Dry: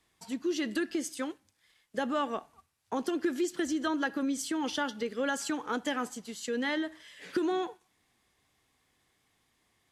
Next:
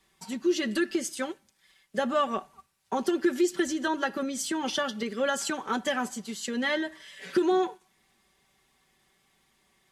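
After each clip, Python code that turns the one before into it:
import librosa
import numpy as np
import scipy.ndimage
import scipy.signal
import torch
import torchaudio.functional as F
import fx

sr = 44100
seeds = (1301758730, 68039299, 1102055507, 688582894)

y = x + 0.68 * np.pad(x, (int(5.2 * sr / 1000.0), 0))[:len(x)]
y = y * librosa.db_to_amplitude(3.0)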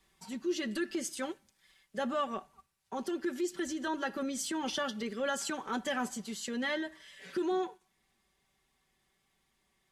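y = fx.low_shelf(x, sr, hz=70.0, db=8.0)
y = fx.rider(y, sr, range_db=3, speed_s=0.5)
y = fx.transient(y, sr, attack_db=-4, sustain_db=0)
y = y * librosa.db_to_amplitude(-5.0)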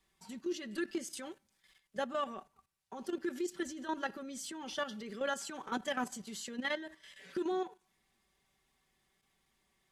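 y = fx.level_steps(x, sr, step_db=11)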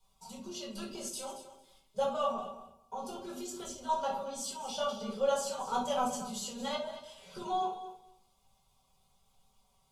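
y = fx.fixed_phaser(x, sr, hz=750.0, stages=4)
y = fx.echo_feedback(y, sr, ms=227, feedback_pct=15, wet_db=-13.0)
y = fx.room_shoebox(y, sr, seeds[0], volume_m3=400.0, walls='furnished', distance_m=4.7)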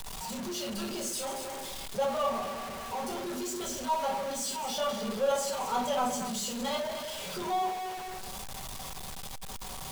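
y = x + 0.5 * 10.0 ** (-34.0 / 20.0) * np.sign(x)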